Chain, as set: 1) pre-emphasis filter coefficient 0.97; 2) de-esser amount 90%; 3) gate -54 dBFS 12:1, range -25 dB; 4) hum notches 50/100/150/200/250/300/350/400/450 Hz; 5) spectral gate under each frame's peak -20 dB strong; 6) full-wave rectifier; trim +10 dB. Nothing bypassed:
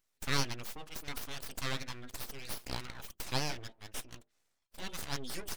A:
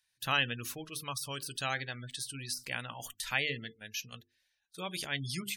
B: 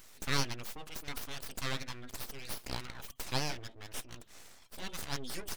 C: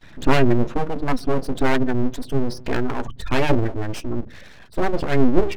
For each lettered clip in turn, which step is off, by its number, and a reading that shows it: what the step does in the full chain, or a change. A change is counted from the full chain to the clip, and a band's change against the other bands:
6, 2 kHz band +5.0 dB; 3, momentary loudness spread change +1 LU; 1, 8 kHz band -18.0 dB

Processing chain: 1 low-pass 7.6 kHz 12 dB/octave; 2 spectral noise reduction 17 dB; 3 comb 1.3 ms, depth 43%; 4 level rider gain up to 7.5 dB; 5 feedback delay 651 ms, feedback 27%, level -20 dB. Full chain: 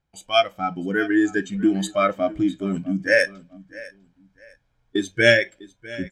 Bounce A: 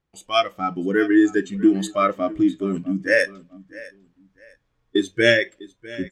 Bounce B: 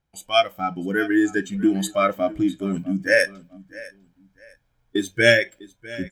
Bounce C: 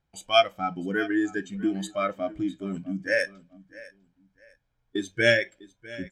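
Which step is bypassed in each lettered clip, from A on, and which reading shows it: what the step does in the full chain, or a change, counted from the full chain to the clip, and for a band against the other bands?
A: 3, 250 Hz band +3.5 dB; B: 1, 8 kHz band +3.0 dB; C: 4, crest factor change +2.0 dB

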